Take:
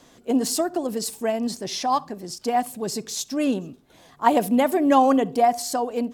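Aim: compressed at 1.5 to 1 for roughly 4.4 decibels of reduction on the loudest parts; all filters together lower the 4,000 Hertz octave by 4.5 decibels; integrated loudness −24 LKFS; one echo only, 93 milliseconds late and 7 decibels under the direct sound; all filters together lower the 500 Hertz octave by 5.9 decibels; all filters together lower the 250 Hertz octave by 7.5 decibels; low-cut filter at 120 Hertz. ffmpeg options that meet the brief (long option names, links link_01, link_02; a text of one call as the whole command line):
ffmpeg -i in.wav -af "highpass=120,equalizer=frequency=250:width_type=o:gain=-6.5,equalizer=frequency=500:width_type=o:gain=-6,equalizer=frequency=4000:width_type=o:gain=-6,acompressor=threshold=-28dB:ratio=1.5,aecho=1:1:93:0.447,volume=5.5dB" out.wav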